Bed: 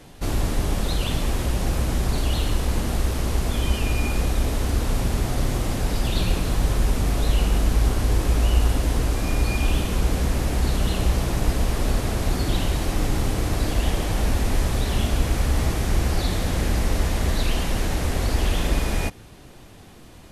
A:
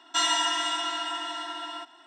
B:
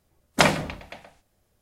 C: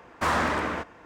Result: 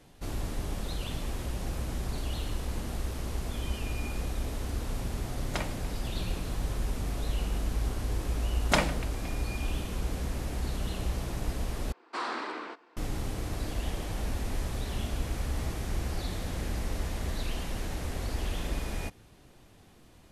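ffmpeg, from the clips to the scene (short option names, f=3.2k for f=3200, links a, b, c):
-filter_complex "[2:a]asplit=2[a][b];[0:a]volume=-11dB[c];[3:a]highpass=f=280:w=0.5412,highpass=f=280:w=1.3066,equalizer=f=360:t=q:w=4:g=4,equalizer=f=580:t=q:w=4:g=-7,equalizer=f=1.8k:t=q:w=4:g=-4,equalizer=f=4.3k:t=q:w=4:g=8,equalizer=f=6.6k:t=q:w=4:g=-7,lowpass=f=8.4k:w=0.5412,lowpass=f=8.4k:w=1.3066[d];[c]asplit=2[e][f];[e]atrim=end=11.924[g];[d]atrim=end=1.05,asetpts=PTS-STARTPTS,volume=-8.5dB[h];[f]atrim=start=12.966[i];[a]atrim=end=1.61,asetpts=PTS-STARTPTS,volume=-17dB,afade=t=in:d=0.004:c=hsin,afade=t=out:st=1.606:d=0.004:c=hsin,adelay=5150[j];[b]atrim=end=1.61,asetpts=PTS-STARTPTS,volume=-7dB,afade=t=in:d=0.004:c=hsin,afade=t=out:st=1.606:d=0.004:c=hsin,adelay=8330[k];[g][h]acrossfade=d=0.004:c1=hsin:c2=hsin[l];[l][i]acrossfade=d=0.004:c1=hsin:c2=hsin[m];[m][j][k]amix=inputs=3:normalize=0"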